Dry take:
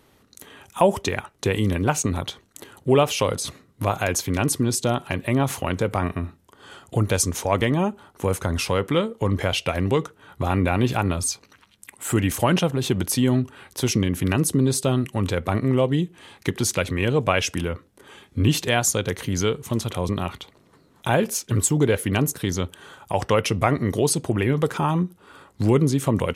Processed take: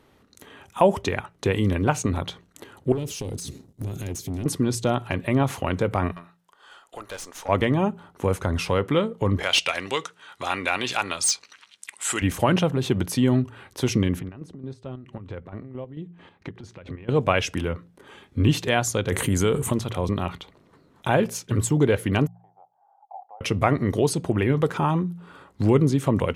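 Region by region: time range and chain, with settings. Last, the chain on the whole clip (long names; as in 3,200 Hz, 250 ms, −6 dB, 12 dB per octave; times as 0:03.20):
0:02.92–0:04.46: drawn EQ curve 390 Hz 0 dB, 830 Hz −29 dB, 6,300 Hz +2 dB + downward compressor 2.5 to 1, threshold −35 dBFS + leveller curve on the samples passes 2
0:06.12–0:07.49: high-pass filter 800 Hz + parametric band 2,200 Hz −4.5 dB 0.39 octaves + tube saturation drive 28 dB, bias 0.5
0:09.43–0:12.22: meter weighting curve ITU-R 468 + gain into a clipping stage and back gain 10 dB
0:14.19–0:17.09: downward compressor 8 to 1, threshold −28 dBFS + square-wave tremolo 4.5 Hz, depth 60%, duty 45% + head-to-tape spacing loss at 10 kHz 21 dB
0:19.12–0:19.73: high shelf with overshoot 6,600 Hz +7.5 dB, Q 3 + envelope flattener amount 70%
0:22.27–0:23.41: flat-topped band-pass 770 Hz, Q 6.4 + downward compressor 1.5 to 1, threshold −50 dBFS
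whole clip: high-shelf EQ 5,000 Hz −9.5 dB; hum removal 57.76 Hz, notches 3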